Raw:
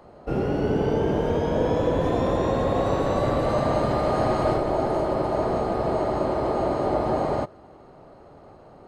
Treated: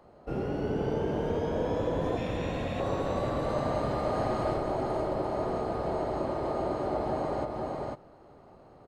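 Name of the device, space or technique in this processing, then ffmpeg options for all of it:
ducked delay: -filter_complex "[0:a]asettb=1/sr,asplit=3[link_01][link_02][link_03];[link_01]atrim=end=2.174[link_04];[link_02]atrim=start=2.17:end=2.8,asetpts=PTS-STARTPTS,afade=type=in:duration=0.004:curve=qsin,afade=type=out:start_time=0.626:duration=0.004:curve=qsin,equalizer=frequency=400:width_type=o:width=0.67:gain=-11,equalizer=frequency=1000:width_type=o:width=0.67:gain=-9,equalizer=frequency=2500:width_type=o:width=0.67:gain=11[link_05];[link_03]atrim=start=2.796[link_06];[link_04][link_05]acrossfade=duration=0.004:curve1=hsin:curve2=qsin[link_07];[link_07][link_06]acrossfade=duration=0.004:curve1=qsin:curve2=hsin,asplit=3[link_08][link_09][link_10];[link_09]adelay=497,volume=-3dB[link_11];[link_10]apad=whole_len=413226[link_12];[link_11][link_12]sidechaincompress=threshold=-26dB:ratio=8:attack=34:release=280[link_13];[link_08][link_13]amix=inputs=2:normalize=0,volume=-7.5dB"

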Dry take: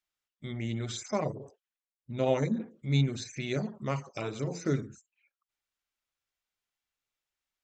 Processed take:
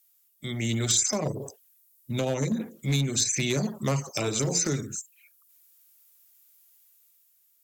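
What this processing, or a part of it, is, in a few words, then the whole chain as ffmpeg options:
FM broadcast chain: -filter_complex "[0:a]highpass=63,dynaudnorm=framelen=130:gausssize=11:maxgain=5dB,acrossover=split=160|580[link_01][link_02][link_03];[link_01]acompressor=threshold=-30dB:ratio=4[link_04];[link_02]acompressor=threshold=-28dB:ratio=4[link_05];[link_03]acompressor=threshold=-36dB:ratio=4[link_06];[link_04][link_05][link_06]amix=inputs=3:normalize=0,aemphasis=mode=production:type=50fm,alimiter=limit=-20.5dB:level=0:latency=1:release=337,asoftclip=type=hard:threshold=-24dB,lowpass=frequency=15000:width=0.5412,lowpass=frequency=15000:width=1.3066,aemphasis=mode=production:type=50fm,volume=4dB"

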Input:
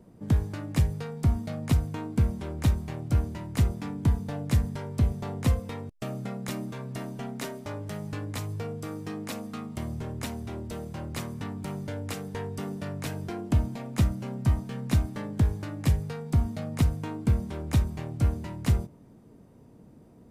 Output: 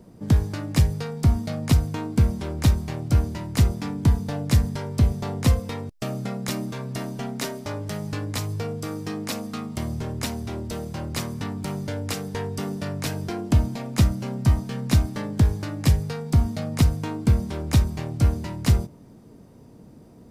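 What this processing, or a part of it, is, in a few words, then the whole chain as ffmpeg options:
presence and air boost: -af "equalizer=frequency=5000:width_type=o:width=0.85:gain=5.5,highshelf=frequency=11000:gain=3.5,volume=5dB"

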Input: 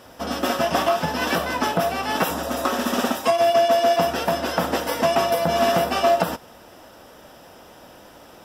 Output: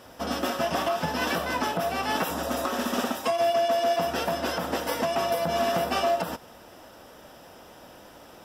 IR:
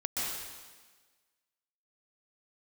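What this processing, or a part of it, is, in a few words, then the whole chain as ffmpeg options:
limiter into clipper: -af "alimiter=limit=-13.5dB:level=0:latency=1:release=196,asoftclip=type=hard:threshold=-14.5dB,volume=-2.5dB"

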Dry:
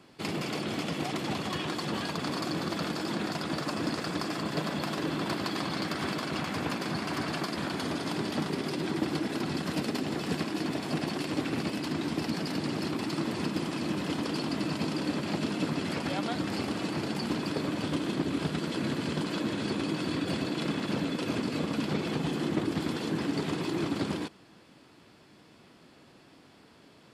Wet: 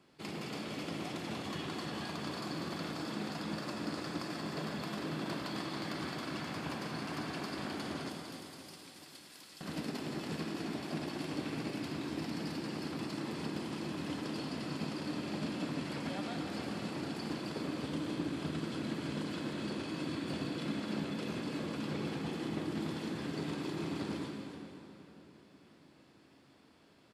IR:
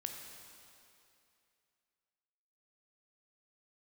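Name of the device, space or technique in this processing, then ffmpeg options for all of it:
cave: -filter_complex "[0:a]asettb=1/sr,asplit=3[link_01][link_02][link_03];[link_01]atrim=end=8.094[link_04];[link_02]atrim=start=8.09:end=9.61,asetpts=PTS-STARTPTS,afade=type=in:duration=0.004:curve=qsin,afade=type=out:start_time=1.516:duration=0.004:curve=qsin,aderivative[link_05];[link_03]atrim=start=9.606[link_06];[link_04][link_05]acrossfade=duration=0.004:curve1=hsin:curve2=qsin[link_07];[link_07][link_06]acrossfade=duration=0.004:curve1=qsin:curve2=hsin,aecho=1:1:285:0.299,asplit=2[link_08][link_09];[link_09]adelay=538,lowpass=frequency=2000:poles=1,volume=-14dB,asplit=2[link_10][link_11];[link_11]adelay=538,lowpass=frequency=2000:poles=1,volume=0.47,asplit=2[link_12][link_13];[link_13]adelay=538,lowpass=frequency=2000:poles=1,volume=0.47,asplit=2[link_14][link_15];[link_15]adelay=538,lowpass=frequency=2000:poles=1,volume=0.47[link_16];[link_08][link_10][link_12][link_14][link_16]amix=inputs=5:normalize=0[link_17];[1:a]atrim=start_sample=2205[link_18];[link_17][link_18]afir=irnorm=-1:irlink=0,volume=-6.5dB"

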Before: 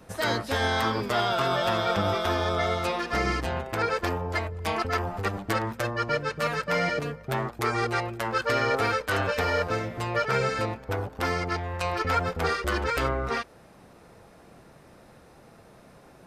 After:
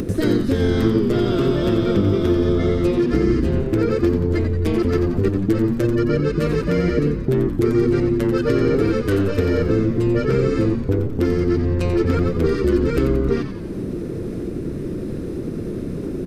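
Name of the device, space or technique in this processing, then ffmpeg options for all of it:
upward and downward compression: -filter_complex "[0:a]lowshelf=frequency=530:width_type=q:width=3:gain=14,acompressor=mode=upward:threshold=-16dB:ratio=2.5,acompressor=threshold=-16dB:ratio=3,asplit=8[link_01][link_02][link_03][link_04][link_05][link_06][link_07][link_08];[link_02]adelay=89,afreqshift=-100,volume=-8dB[link_09];[link_03]adelay=178,afreqshift=-200,volume=-12.7dB[link_10];[link_04]adelay=267,afreqshift=-300,volume=-17.5dB[link_11];[link_05]adelay=356,afreqshift=-400,volume=-22.2dB[link_12];[link_06]adelay=445,afreqshift=-500,volume=-26.9dB[link_13];[link_07]adelay=534,afreqshift=-600,volume=-31.7dB[link_14];[link_08]adelay=623,afreqshift=-700,volume=-36.4dB[link_15];[link_01][link_09][link_10][link_11][link_12][link_13][link_14][link_15]amix=inputs=8:normalize=0"

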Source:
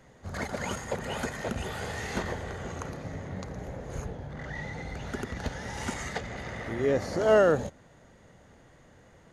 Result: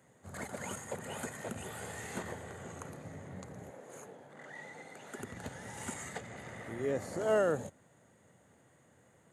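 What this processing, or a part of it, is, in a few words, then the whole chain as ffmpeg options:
budget condenser microphone: -filter_complex "[0:a]asettb=1/sr,asplit=3[link_01][link_02][link_03];[link_01]atrim=end=3.704[link_04];[link_02]atrim=start=3.7:end=5.19,asetpts=PTS-STARTPTS,afade=type=in:duration=0.004:curve=qsin,afade=type=out:start_time=1.486:duration=0.004:curve=qsin,highpass=300[link_05];[link_03]atrim=start=5.186[link_06];[link_04][link_05]acrossfade=duration=0.004:curve1=hsin:curve2=qsin[link_07];[link_07][link_06]acrossfade=duration=0.004:curve1=qsin:curve2=hsin,highpass=frequency=91:width=0.5412,highpass=frequency=91:width=1.3066,highshelf=frequency=6600:width_type=q:width=3:gain=6.5,volume=-8dB"

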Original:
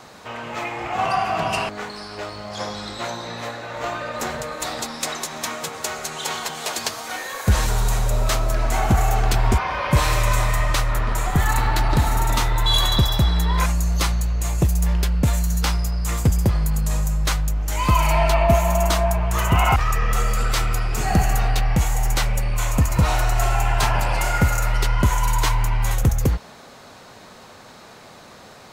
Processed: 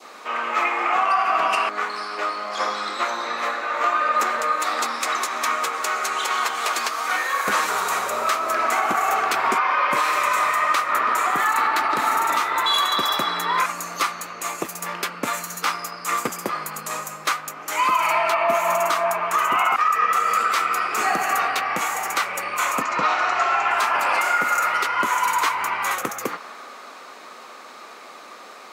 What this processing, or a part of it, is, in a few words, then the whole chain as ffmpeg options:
laptop speaker: -filter_complex "[0:a]asettb=1/sr,asplit=3[link_01][link_02][link_03];[link_01]atrim=end=22.824[link_04];[link_02]atrim=start=22.82:end=23.71,asetpts=PTS-STARTPTS,afade=type=in:duration=0.004:curve=qsin,afade=type=out:start_time=0.886:duration=0.004:curve=qsin,lowpass=frequency=5700:width=0.5412,lowpass=frequency=5700:width=1.3066[link_05];[link_03]atrim=start=23.706[link_06];[link_04][link_05]acrossfade=duration=0.004:curve1=hsin:curve2=qsin[link_07];[link_07][link_06]acrossfade=duration=0.004:curve1=qsin:curve2=hsin,adynamicequalizer=threshold=0.0112:dfrequency=1400:dqfactor=1.1:tfrequency=1400:tqfactor=1.1:attack=5:release=100:ratio=0.375:range=3:mode=boostabove:tftype=bell,highpass=frequency=270:width=0.5412,highpass=frequency=270:width=1.3066,equalizer=frequency=1200:width_type=o:width=0.3:gain=10,equalizer=frequency=2300:width_type=o:width=0.52:gain=5.5,alimiter=limit=-10.5dB:level=0:latency=1:release=169"

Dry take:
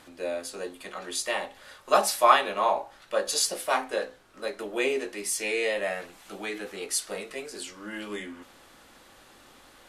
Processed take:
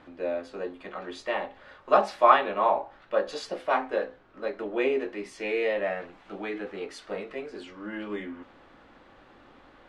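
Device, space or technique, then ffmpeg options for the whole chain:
phone in a pocket: -af "lowpass=3200,equalizer=frequency=290:width_type=o:width=0.21:gain=3,highshelf=frequency=2400:gain=-9,volume=2dB"

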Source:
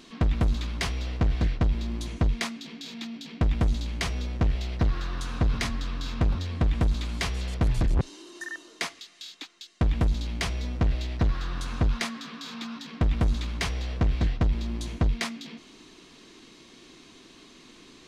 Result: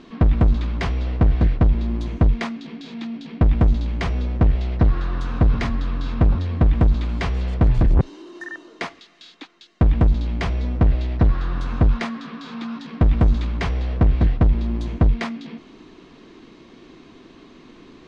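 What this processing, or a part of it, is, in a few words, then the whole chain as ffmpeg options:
through cloth: -filter_complex "[0:a]asettb=1/sr,asplit=3[link_01][link_02][link_03];[link_01]atrim=end=12.684[link_04];[link_02]atrim=start=12.68:end=13.48,asetpts=PTS-STARTPTS,afade=type=in:duration=0.004:curve=qsin,afade=type=out:start_time=0.796:duration=0.004:curve=qsin,highshelf=frequency=6100:gain=5[link_05];[link_03]atrim=start=13.476[link_06];[link_04][link_05]acrossfade=duration=0.004:curve1=hsin:curve2=qsin[link_07];[link_07][link_06]acrossfade=duration=0.004:curve1=qsin:curve2=hsin,lowpass=6500,highshelf=frequency=2600:gain=-16,volume=8dB"

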